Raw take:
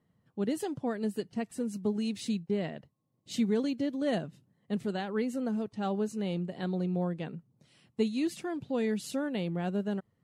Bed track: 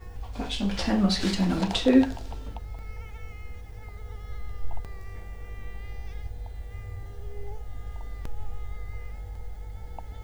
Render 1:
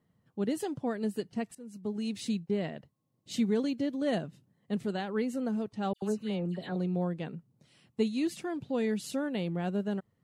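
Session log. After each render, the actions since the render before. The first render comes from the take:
0:01.55–0:02.18: fade in, from −20 dB
0:05.93–0:06.76: all-pass dispersion lows, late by 93 ms, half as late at 2,100 Hz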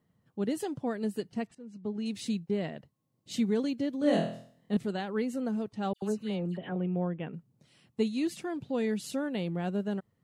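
0:01.47–0:02.06: high-frequency loss of the air 110 metres
0:03.99–0:04.77: flutter between parallel walls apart 4.1 metres, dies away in 0.52 s
0:06.57–0:07.34: Butterworth low-pass 3,300 Hz 96 dB per octave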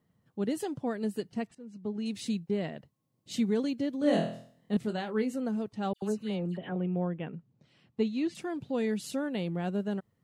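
0:04.79–0:05.35: double-tracking delay 23 ms −9 dB
0:07.30–0:08.35: high-frequency loss of the air 120 metres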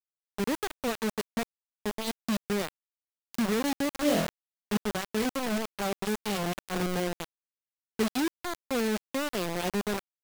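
bit reduction 5 bits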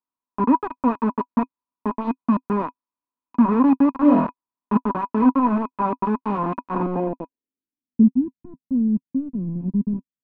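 low-pass filter sweep 1,100 Hz → 170 Hz, 0:06.74–0:08.16
hollow resonant body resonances 260/980/2,500 Hz, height 17 dB, ringing for 50 ms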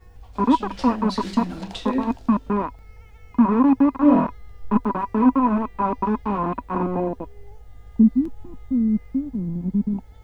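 mix in bed track −6.5 dB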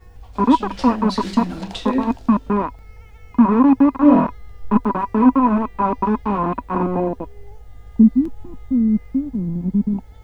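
level +3.5 dB

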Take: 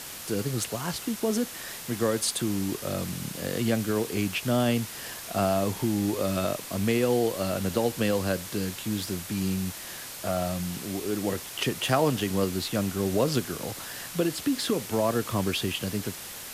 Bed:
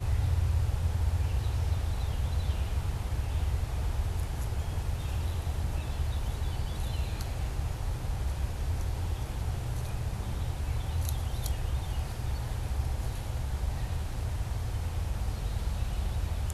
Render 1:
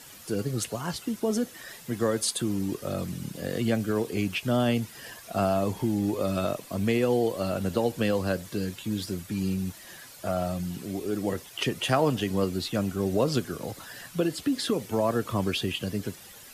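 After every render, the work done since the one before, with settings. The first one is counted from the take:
broadband denoise 11 dB, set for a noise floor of −40 dBFS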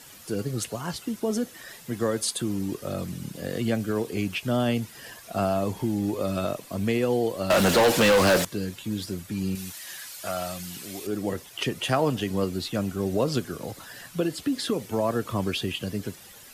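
0:07.50–0:08.45: mid-hump overdrive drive 32 dB, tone 5,500 Hz, clips at −11.5 dBFS
0:09.55–0:11.07: tilt shelving filter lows −8 dB, about 890 Hz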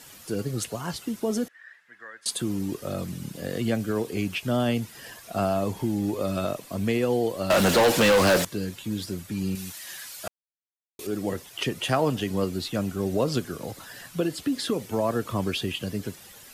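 0:01.48–0:02.26: resonant band-pass 1,700 Hz, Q 5.6
0:10.28–0:10.99: silence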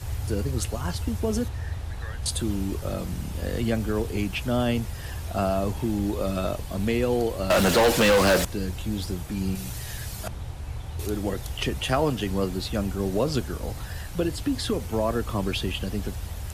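mix in bed −2.5 dB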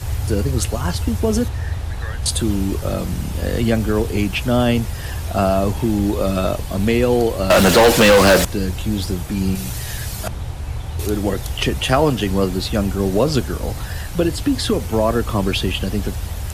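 level +8 dB

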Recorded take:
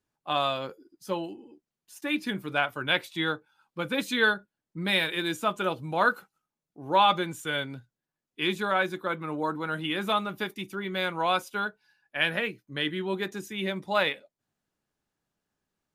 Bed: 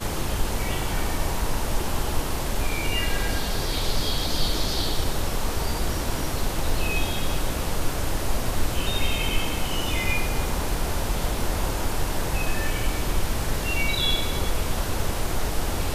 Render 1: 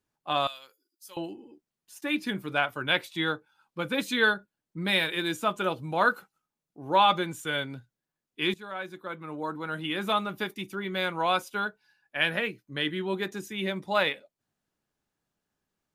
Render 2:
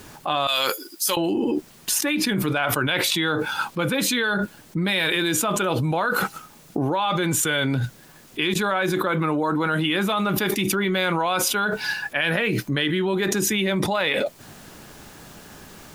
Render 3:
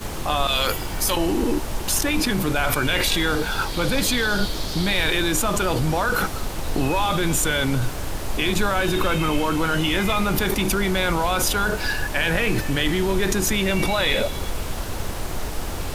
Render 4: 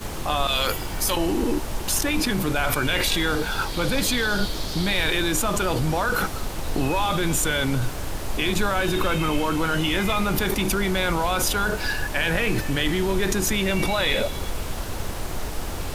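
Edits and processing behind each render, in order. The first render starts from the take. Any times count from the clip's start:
0:00.47–0:01.17: first difference; 0:08.54–0:10.17: fade in, from −15.5 dB
brickwall limiter −15.5 dBFS, peak gain reduction 6 dB; envelope flattener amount 100%
mix in bed −2.5 dB
level −1.5 dB

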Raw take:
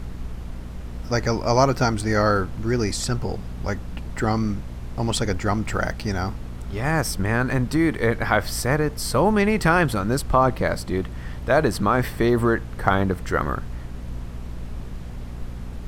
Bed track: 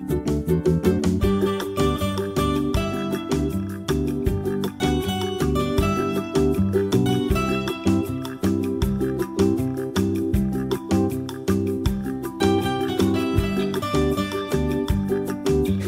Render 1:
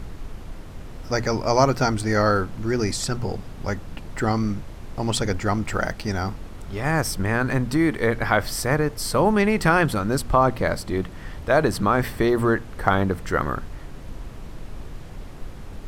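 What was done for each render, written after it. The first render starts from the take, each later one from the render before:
hum removal 60 Hz, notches 4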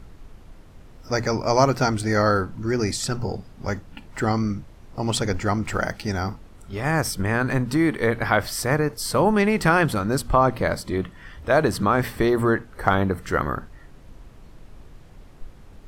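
noise reduction from a noise print 9 dB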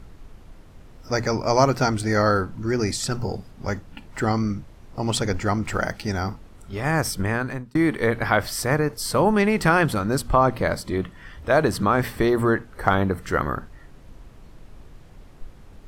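0:03.11–0:03.51: high-shelf EQ 8,200 Hz +5.5 dB
0:07.25–0:07.75: fade out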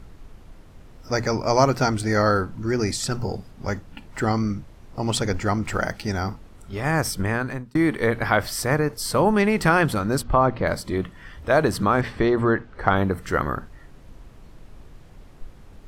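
0:10.23–0:10.67: high-frequency loss of the air 160 metres
0:12.01–0:12.96: low-pass filter 4,400 Hz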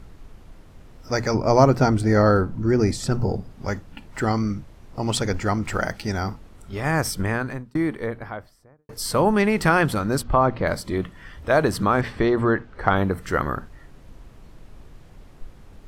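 0:01.34–0:03.51: tilt shelving filter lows +5 dB, about 1,100 Hz
0:07.23–0:08.89: fade out and dull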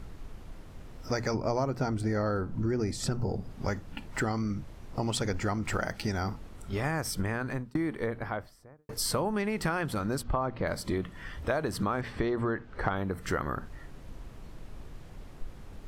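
downward compressor 6 to 1, threshold −27 dBFS, peak gain reduction 16 dB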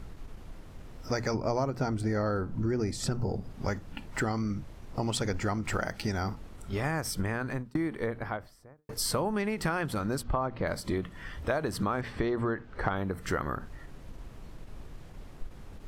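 every ending faded ahead of time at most 250 dB per second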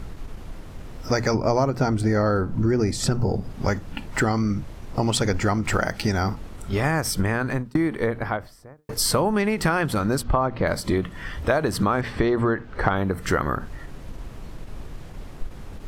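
level +8.5 dB

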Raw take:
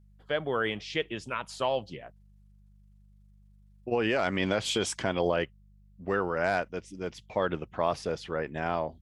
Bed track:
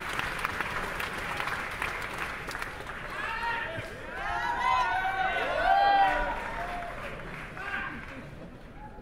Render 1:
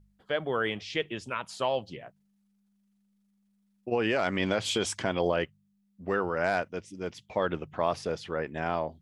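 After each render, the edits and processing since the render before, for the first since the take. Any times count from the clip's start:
hum removal 50 Hz, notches 3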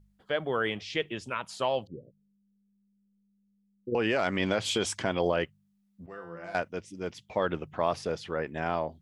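0:01.87–0:03.95: Butterworth low-pass 540 Hz 96 dB per octave
0:06.06–0:06.55: tuned comb filter 170 Hz, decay 0.7 s, mix 90%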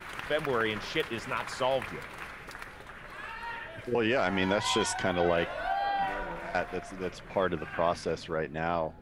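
mix in bed track −7.5 dB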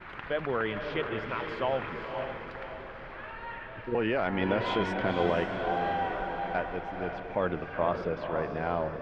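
high-frequency loss of the air 330 metres
feedback delay with all-pass diffusion 506 ms, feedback 49%, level −5.5 dB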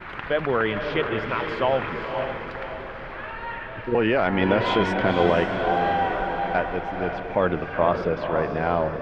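level +7.5 dB

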